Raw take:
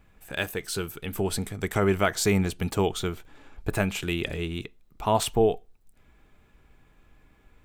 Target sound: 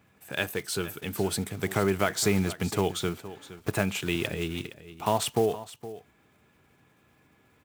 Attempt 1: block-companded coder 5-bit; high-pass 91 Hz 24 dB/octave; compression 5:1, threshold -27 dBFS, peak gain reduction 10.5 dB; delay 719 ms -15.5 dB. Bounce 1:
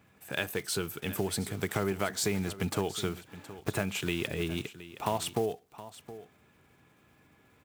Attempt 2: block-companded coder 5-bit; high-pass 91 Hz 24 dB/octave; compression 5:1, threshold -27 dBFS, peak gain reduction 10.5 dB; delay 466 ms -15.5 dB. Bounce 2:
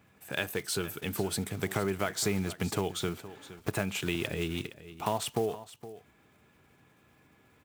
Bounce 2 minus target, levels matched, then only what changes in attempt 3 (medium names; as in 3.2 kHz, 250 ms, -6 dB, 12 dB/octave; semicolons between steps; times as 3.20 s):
compression: peak gain reduction +6 dB
change: compression 5:1, threshold -19.5 dBFS, peak gain reduction 4.5 dB